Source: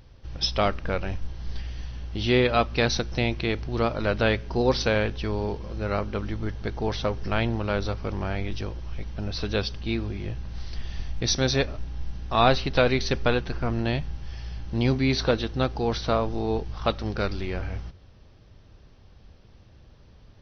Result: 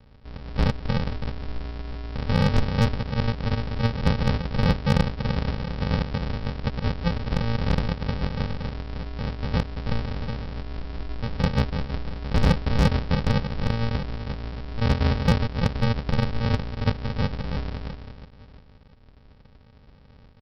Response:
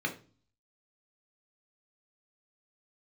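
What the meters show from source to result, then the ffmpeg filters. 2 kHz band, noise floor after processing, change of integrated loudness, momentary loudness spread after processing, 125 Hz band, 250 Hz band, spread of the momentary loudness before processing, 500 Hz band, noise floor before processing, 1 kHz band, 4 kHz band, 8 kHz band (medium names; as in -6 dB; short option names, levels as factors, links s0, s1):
-3.5 dB, -52 dBFS, 0.0 dB, 12 LU, +5.0 dB, +1.5 dB, 14 LU, -6.0 dB, -52 dBFS, -3.0 dB, -4.5 dB, no reading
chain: -filter_complex "[0:a]acrossover=split=160[s0][s1];[s1]acontrast=66[s2];[s0][s2]amix=inputs=2:normalize=0,lowpass=f=1500:w=0.5412,lowpass=f=1500:w=1.3066,bandreject=f=380:w=12,aecho=1:1:333|666|999|1332:0.398|0.135|0.046|0.0156,aresample=11025,acrusher=samples=32:mix=1:aa=0.000001,aresample=44100,volume=2.99,asoftclip=hard,volume=0.335,volume=0.75"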